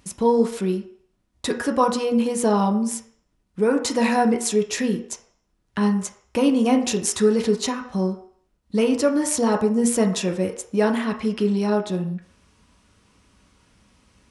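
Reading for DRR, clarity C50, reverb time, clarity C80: 2.5 dB, 10.0 dB, 0.60 s, 13.0 dB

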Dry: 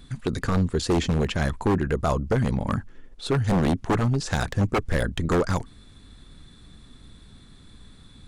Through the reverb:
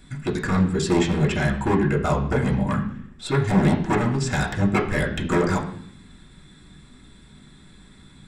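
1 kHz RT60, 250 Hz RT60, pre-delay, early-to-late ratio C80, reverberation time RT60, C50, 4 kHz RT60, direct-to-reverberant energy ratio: 0.65 s, 0.95 s, 3 ms, 11.5 dB, 0.65 s, 9.0 dB, 0.85 s, -4.5 dB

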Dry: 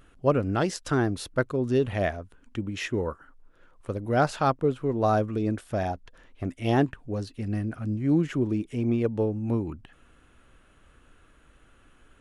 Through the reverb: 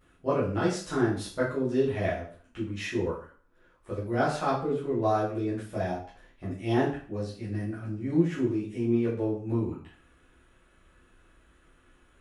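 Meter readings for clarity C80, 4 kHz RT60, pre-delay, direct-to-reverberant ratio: 9.5 dB, 0.40 s, 4 ms, -10.0 dB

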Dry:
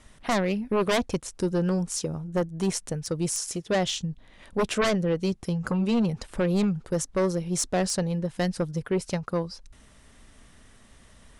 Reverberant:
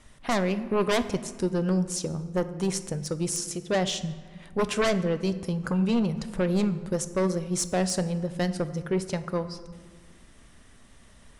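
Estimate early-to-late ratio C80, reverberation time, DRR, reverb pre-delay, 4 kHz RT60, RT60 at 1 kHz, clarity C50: 14.5 dB, 1.6 s, 11.0 dB, 5 ms, 0.95 s, 1.6 s, 13.5 dB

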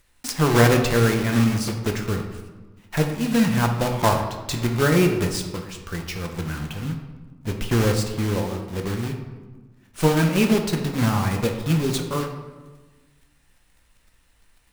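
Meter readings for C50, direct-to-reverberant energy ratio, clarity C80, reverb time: 6.5 dB, 3.0 dB, 8.5 dB, 1.3 s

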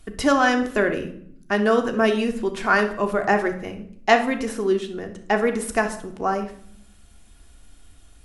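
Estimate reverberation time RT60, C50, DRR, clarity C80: 0.60 s, 10.0 dB, 4.5 dB, 14.5 dB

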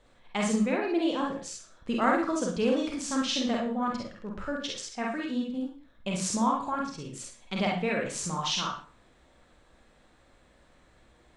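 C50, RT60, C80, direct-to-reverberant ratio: 4.0 dB, 0.40 s, 9.5 dB, -2.0 dB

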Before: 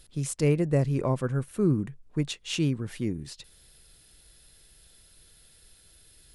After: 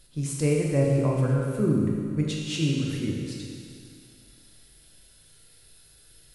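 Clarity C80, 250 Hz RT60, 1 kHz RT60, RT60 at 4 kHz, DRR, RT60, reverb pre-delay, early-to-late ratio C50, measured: 2.0 dB, 2.3 s, 2.3 s, 2.3 s, -2.0 dB, 2.3 s, 7 ms, 0.5 dB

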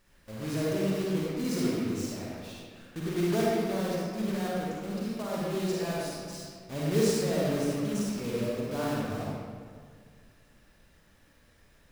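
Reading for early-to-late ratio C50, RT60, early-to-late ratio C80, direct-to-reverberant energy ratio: -4.5 dB, 1.9 s, -1.0 dB, -6.0 dB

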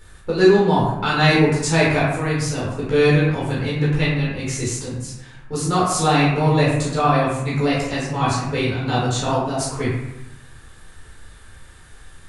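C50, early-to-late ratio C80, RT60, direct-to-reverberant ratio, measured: 1.0 dB, 4.0 dB, 0.95 s, -7.5 dB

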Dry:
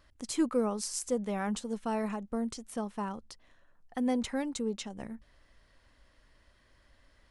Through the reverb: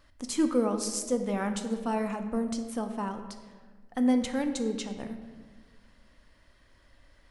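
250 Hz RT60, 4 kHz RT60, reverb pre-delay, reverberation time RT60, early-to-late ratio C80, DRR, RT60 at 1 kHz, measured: 2.0 s, 0.95 s, 3 ms, 1.5 s, 10.0 dB, 6.0 dB, 1.3 s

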